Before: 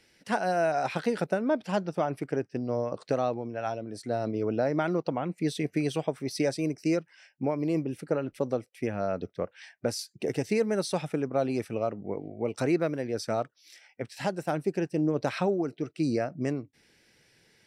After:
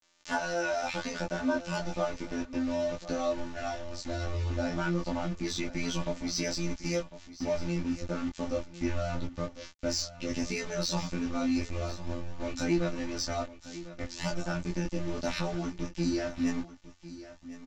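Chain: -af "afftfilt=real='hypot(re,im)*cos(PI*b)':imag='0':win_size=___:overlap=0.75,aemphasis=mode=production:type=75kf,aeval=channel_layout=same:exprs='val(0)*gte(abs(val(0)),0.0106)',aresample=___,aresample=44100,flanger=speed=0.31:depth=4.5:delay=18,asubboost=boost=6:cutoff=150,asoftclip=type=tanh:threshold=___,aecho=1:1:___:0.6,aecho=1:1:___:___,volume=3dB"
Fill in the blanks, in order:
2048, 16000, -20.5dB, 3.4, 1051, 0.178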